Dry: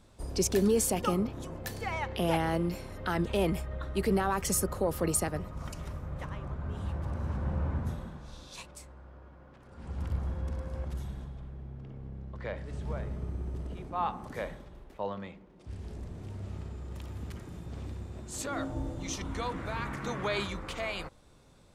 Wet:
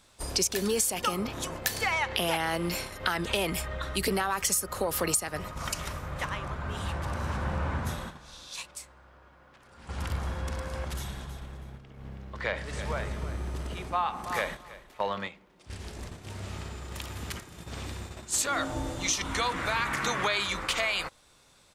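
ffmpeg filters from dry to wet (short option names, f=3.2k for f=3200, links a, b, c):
-filter_complex "[0:a]asettb=1/sr,asplit=3[a][b][c];[a]atrim=end=3.534[d];[b]atrim=start=3.53:end=4.08,asetpts=PTS-STARTPTS,afade=t=in:d=0.004:c=qsin,afade=t=out:st=0.546:d=0.004:c=qsin,acrossover=split=300|3000[e][f][g];[f]acompressor=threshold=-42dB:ratio=6:attack=3.2:release=140:knee=2.83:detection=peak[h];[e][h][g]amix=inputs=3:normalize=0[i];[c]atrim=start=4.076[j];[d][i]acrossfade=d=0.004:c1=hsin:c2=qsin[k];[k][j]acrossfade=d=0.004:c1=qsin:c2=hsin,asplit=3[l][m][n];[l]afade=t=out:st=11.27:d=0.02[o];[m]aecho=1:1:322|644|966:0.237|0.0711|0.0213,afade=t=in:st=11.27:d=0.02,afade=t=out:st=15.15:d=0.02[p];[n]afade=t=in:st=15.15:d=0.02[q];[o][p][q]amix=inputs=3:normalize=0,agate=range=-8dB:threshold=-41dB:ratio=16:detection=peak,tiltshelf=f=770:g=-8,acompressor=threshold=-32dB:ratio=12,volume=8dB"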